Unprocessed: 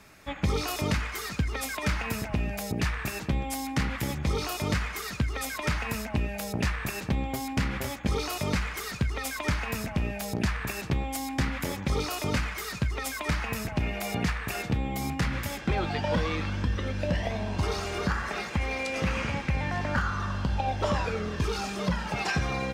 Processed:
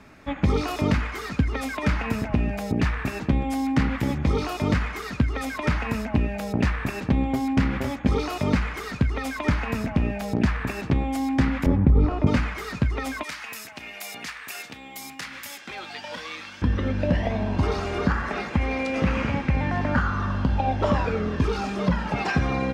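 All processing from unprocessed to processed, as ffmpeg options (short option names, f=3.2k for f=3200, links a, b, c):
-filter_complex "[0:a]asettb=1/sr,asplit=3[a][b][c];[a]atrim=end=11.664[d];[b]atrim=start=11.66:end=12.27,asetpts=PTS-STARTPTS,afade=t=in:d=0.004:c=qsin,afade=t=out:st=0.606:d=0.004:c=qsin,lowpass=f=1.6k:p=1,aemphasis=mode=reproduction:type=riaa,acompressor=threshold=-17dB:ratio=10:attack=3.2:release=140:knee=1:detection=peak[e];[c]atrim=start=12.266[f];[d][e]acrossfade=d=0.004:c1=hsin:c2=qsin[g];[g][f]acrossfade=d=0.004:c1=qsin:c2=hsin,asettb=1/sr,asplit=3[h][i][j];[h]atrim=end=13.234[k];[i]atrim=start=13.23:end=16.62,asetpts=PTS-STARTPTS,afade=t=in:d=0.004:c=qsin,afade=t=out:st=3.386:d=0.004:c=qsin,aderivative,acontrast=89[l];[j]atrim=start=16.616[m];[k][l]acrossfade=d=0.004:c1=hsin:c2=qsin[n];[n][m]acrossfade=d=0.004:c1=qsin:c2=hsin,lowpass=f=2k:p=1,equalizer=f=260:t=o:w=0.39:g=6.5,volume=5dB"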